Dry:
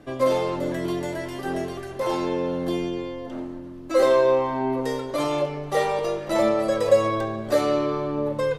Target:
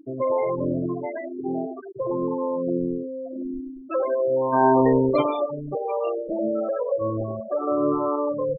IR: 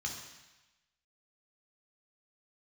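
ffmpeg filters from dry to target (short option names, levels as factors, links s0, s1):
-filter_complex "[0:a]alimiter=limit=0.15:level=0:latency=1:release=197,acrossover=split=480[s0][s1];[s0]aeval=exprs='val(0)*(1-0.7/2+0.7/2*cos(2*PI*1.4*n/s))':c=same[s2];[s1]aeval=exprs='val(0)*(1-0.7/2-0.7/2*cos(2*PI*1.4*n/s))':c=same[s3];[s2][s3]amix=inputs=2:normalize=0,acompressor=mode=upward:threshold=0.0178:ratio=2.5,asettb=1/sr,asplit=3[s4][s5][s6];[s4]atrim=end=1.064[s7];[s5]atrim=start=1.06:end=1.75,asetpts=PTS-STARTPTS,afade=t=in:d=0.004:c=qsin,afade=t=out:st=0.686:d=0.004:c=qsin,highpass=170,lowpass=3000[s8];[s6]atrim=start=1.746[s9];[s7][s8]acrossfade=d=0.004:c1=hsin:c2=qsin[s10];[s10][s9]acrossfade=d=0.004:c1=qsin:c2=hsin,asplit=3[s11][s12][s13];[s11]afade=t=out:st=4.52:d=0.02[s14];[s12]acontrast=57,afade=t=in:st=4.52:d=0.02,afade=t=out:st=5.21:d=0.02[s15];[s13]afade=t=in:st=5.21:d=0.02[s16];[s14][s15][s16]amix=inputs=3:normalize=0,asettb=1/sr,asplit=3[s17][s18][s19];[s17]atrim=end=7.674[s20];[s18]atrim=start=7.67:end=8.16,asetpts=PTS-STARTPTS,afade=t=in:d=0.004:c=qsin,afade=t=out:st=0.486:d=0.004:c=qsin,equalizer=f=1100:t=o:w=2.1:g=7[s21];[s19]atrim=start=8.156[s22];[s20][s21]acrossfade=d=0.004:c1=hsin:c2=qsin[s23];[s23][s22]acrossfade=d=0.004:c1=qsin:c2=hsin,aecho=1:1:99|198|297|396:0.398|0.119|0.0358|0.0107,afftfilt=real='re*gte(hypot(re,im),0.0708)':imag='im*gte(hypot(re,im),0.0708)':win_size=1024:overlap=0.75,volume=1.58"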